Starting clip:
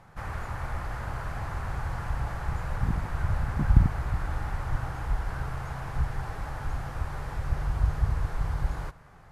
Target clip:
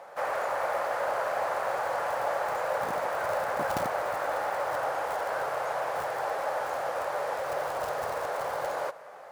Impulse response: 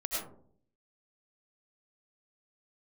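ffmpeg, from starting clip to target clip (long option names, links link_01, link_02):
-af "acrusher=bits=8:mode=log:mix=0:aa=0.000001,highpass=frequency=560:width_type=q:width=4.9,volume=5dB"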